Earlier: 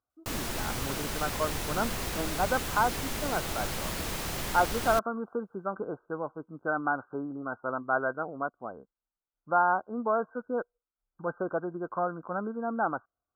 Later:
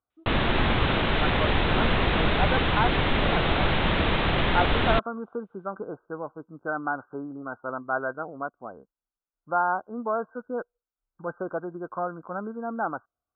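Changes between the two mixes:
background +12.0 dB
master: add Butterworth low-pass 3,800 Hz 96 dB per octave

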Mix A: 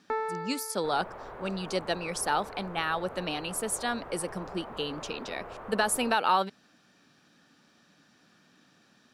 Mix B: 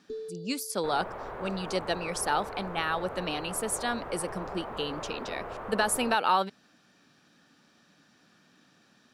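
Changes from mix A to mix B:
first sound: add linear-phase brick-wall band-stop 450–3,500 Hz
second sound +4.0 dB

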